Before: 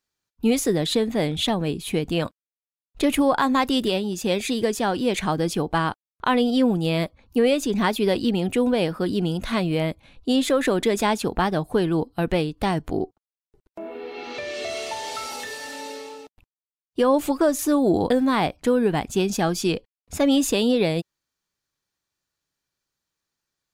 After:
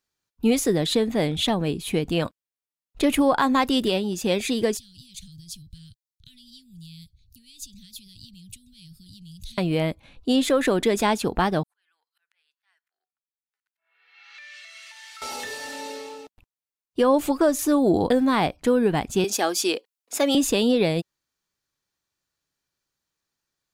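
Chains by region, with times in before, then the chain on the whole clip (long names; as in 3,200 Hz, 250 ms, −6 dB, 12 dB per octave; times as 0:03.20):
0:04.77–0:09.58: downward compressor 5 to 1, threshold −29 dBFS + Chebyshev band-stop filter 130–4,000 Hz, order 3
0:11.63–0:15.22: downward compressor 12 to 1, threshold −29 dBFS + volume swells 755 ms + four-pole ladder high-pass 1,400 Hz, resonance 45%
0:19.24–0:20.35: high-pass filter 310 Hz 24 dB per octave + high-shelf EQ 3,400 Hz +6.5 dB
whole clip: no processing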